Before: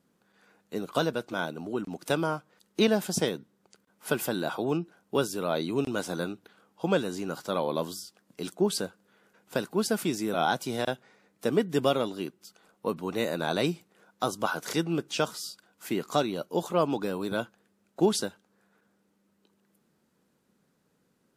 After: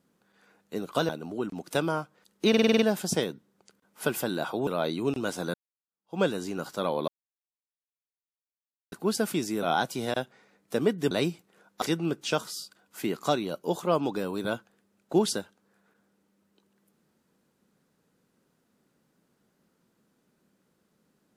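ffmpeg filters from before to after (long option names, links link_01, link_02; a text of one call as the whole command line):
ffmpeg -i in.wav -filter_complex "[0:a]asplit=14[link_01][link_02][link_03][link_04][link_05][link_06][link_07][link_08][link_09][link_10][link_11][link_12][link_13][link_14];[link_01]atrim=end=1.092[link_15];[link_02]atrim=start=1.438:end=2.892[link_16];[link_03]atrim=start=2.838:end=2.892[link_17];[link_04]atrim=start=2.838:end=2.892[link_18];[link_05]atrim=start=2.838:end=2.892[link_19];[link_06]atrim=start=2.838:end=2.892[link_20];[link_07]atrim=start=2.838:end=2.892[link_21];[link_08]atrim=start=2.838:end=4.722[link_22];[link_09]atrim=start=5.378:end=6.25,asetpts=PTS-STARTPTS,afade=type=out:start_time=0.868:duration=0.004:curve=hsin[link_23];[link_10]atrim=start=6.25:end=7.79,asetpts=PTS-STARTPTS,afade=type=in:duration=0.66:curve=exp,afade=type=out:start_time=1.536:duration=0.004:curve=hsin[link_24];[link_11]atrim=start=7.79:end=9.63,asetpts=PTS-STARTPTS,volume=0[link_25];[link_12]atrim=start=9.63:end=11.822,asetpts=PTS-STARTPTS,afade=type=in:duration=0.004:curve=hsin[link_26];[link_13]atrim=start=13.528:end=14.242[link_27];[link_14]atrim=start=14.688[link_28];[link_15][link_16]acrossfade=duration=0.004:curve1=hsin:curve2=hsin[link_29];[link_29][link_17]acrossfade=duration=0.004:curve1=hsin:curve2=hsin[link_30];[link_30][link_18]acrossfade=duration=0.004:curve1=hsin:curve2=hsin[link_31];[link_31][link_19]acrossfade=duration=0.004:curve1=hsin:curve2=hsin[link_32];[link_32][link_20]acrossfade=duration=0.004:curve1=hsin:curve2=hsin[link_33];[link_33][link_21]acrossfade=duration=0.004:curve1=hsin:curve2=hsin[link_34];[link_34][link_22]acrossfade=duration=0.004:curve1=hsin:curve2=hsin[link_35];[link_23][link_24][link_25][link_26]concat=n=4:v=0:a=1[link_36];[link_35][link_36]acrossfade=duration=0.004:curve1=hsin:curve2=hsin[link_37];[link_37][link_27]acrossfade=duration=0.004:curve1=hsin:curve2=hsin[link_38];[link_38][link_28]acrossfade=duration=0.004:curve1=hsin:curve2=hsin" out.wav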